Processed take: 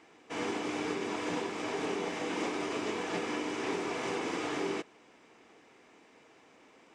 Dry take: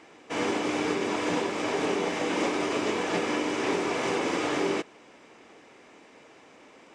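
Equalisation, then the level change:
notch filter 570 Hz, Q 12
−6.5 dB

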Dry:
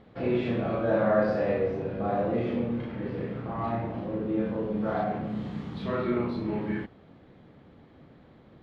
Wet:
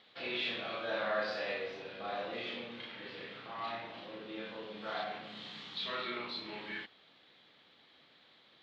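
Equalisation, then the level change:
resonant band-pass 3,800 Hz, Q 2.4
+12.0 dB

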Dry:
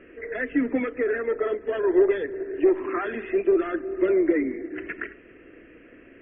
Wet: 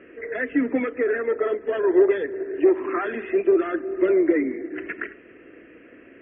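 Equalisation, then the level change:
high-pass filter 160 Hz 6 dB per octave
high-frequency loss of the air 120 metres
+3.0 dB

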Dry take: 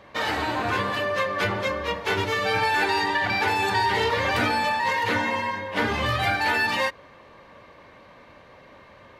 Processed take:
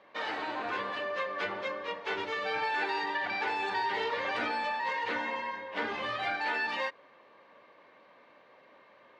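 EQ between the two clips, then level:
band-pass filter 290–4,200 Hz
−8.5 dB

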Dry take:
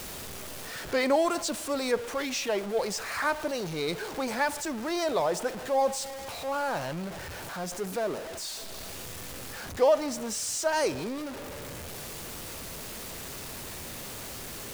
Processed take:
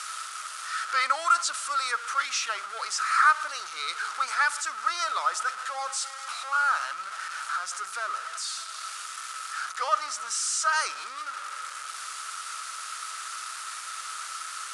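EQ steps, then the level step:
high-pass with resonance 1,300 Hz, resonance Q 16
elliptic low-pass filter 10,000 Hz, stop band 50 dB
high-shelf EQ 3,200 Hz +9.5 dB
−3.5 dB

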